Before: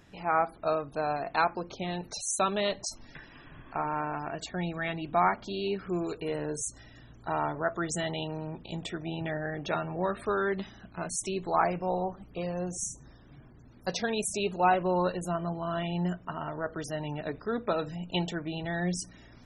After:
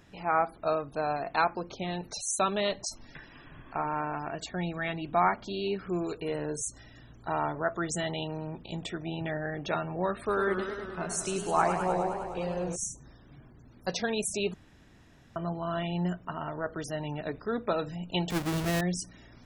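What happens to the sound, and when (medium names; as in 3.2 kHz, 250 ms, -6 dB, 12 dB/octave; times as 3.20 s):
10.18–12.76 s: modulated delay 103 ms, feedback 75%, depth 122 cents, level -8 dB
14.54–15.36 s: room tone
18.30–18.81 s: square wave that keeps the level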